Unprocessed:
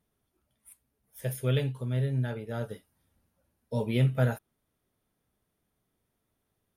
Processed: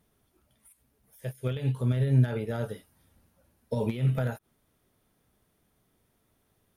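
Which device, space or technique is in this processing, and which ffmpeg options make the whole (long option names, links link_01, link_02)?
de-esser from a sidechain: -filter_complex "[0:a]asplit=2[link_01][link_02];[link_02]highpass=5200,apad=whole_len=298555[link_03];[link_01][link_03]sidechaincompress=threshold=-60dB:ratio=12:attack=0.98:release=71,volume=8dB"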